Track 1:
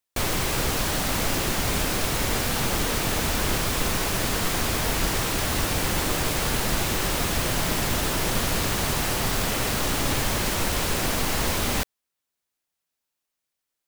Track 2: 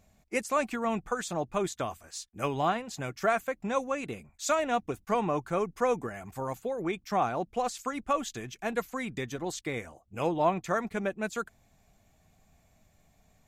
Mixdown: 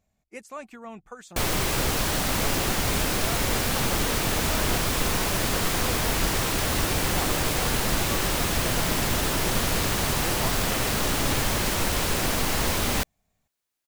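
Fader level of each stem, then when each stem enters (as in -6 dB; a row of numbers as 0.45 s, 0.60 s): 0.0 dB, -10.5 dB; 1.20 s, 0.00 s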